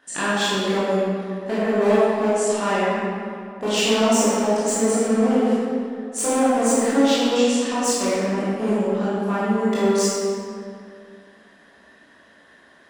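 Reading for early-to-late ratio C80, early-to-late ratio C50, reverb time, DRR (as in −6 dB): −2.0 dB, −4.5 dB, 2.3 s, −11.0 dB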